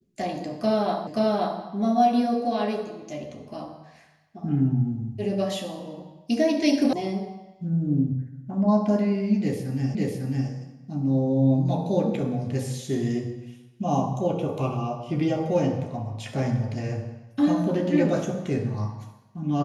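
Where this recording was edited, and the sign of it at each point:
1.07 repeat of the last 0.53 s
6.93 sound cut off
9.95 repeat of the last 0.55 s

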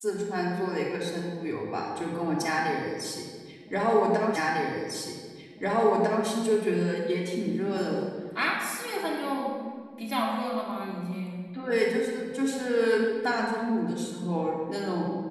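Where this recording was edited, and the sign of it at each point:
4.36 repeat of the last 1.9 s

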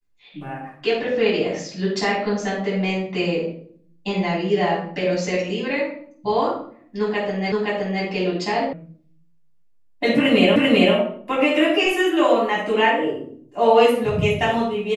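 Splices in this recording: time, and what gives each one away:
7.52 repeat of the last 0.52 s
8.73 sound cut off
10.56 repeat of the last 0.39 s

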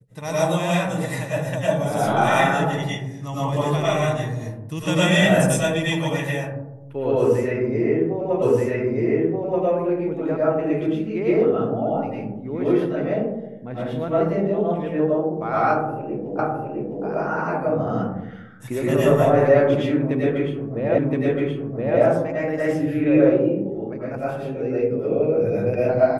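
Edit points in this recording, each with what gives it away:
8.42 repeat of the last 1.23 s
16.39 repeat of the last 0.66 s
20.98 repeat of the last 1.02 s

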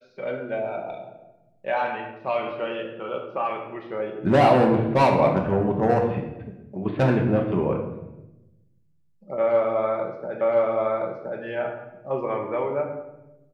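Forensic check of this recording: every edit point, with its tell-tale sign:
10.41 repeat of the last 1.02 s

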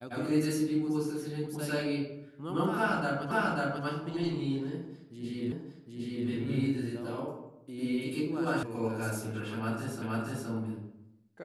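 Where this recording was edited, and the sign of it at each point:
3.31 repeat of the last 0.54 s
5.52 repeat of the last 0.76 s
8.63 sound cut off
10.02 repeat of the last 0.47 s

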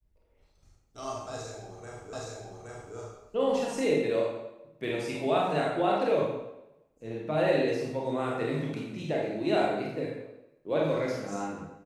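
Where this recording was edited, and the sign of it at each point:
2.13 repeat of the last 0.82 s

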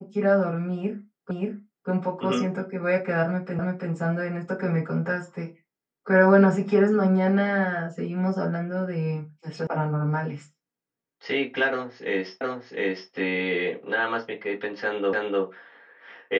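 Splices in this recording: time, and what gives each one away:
1.31 repeat of the last 0.58 s
3.59 repeat of the last 0.33 s
9.67 sound cut off
12.41 repeat of the last 0.71 s
15.13 repeat of the last 0.3 s

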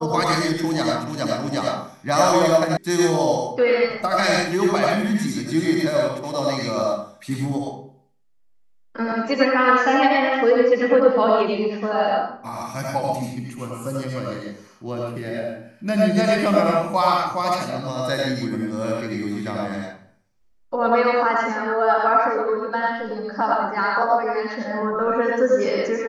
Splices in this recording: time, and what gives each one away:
2.77 sound cut off

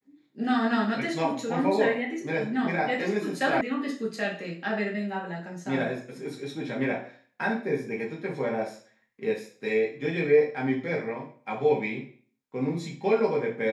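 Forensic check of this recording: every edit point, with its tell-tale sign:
3.61 sound cut off

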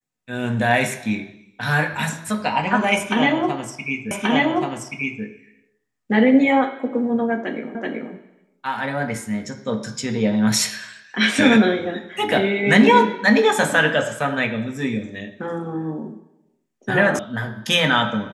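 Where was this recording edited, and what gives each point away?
4.11 repeat of the last 1.13 s
7.75 repeat of the last 0.38 s
17.19 sound cut off

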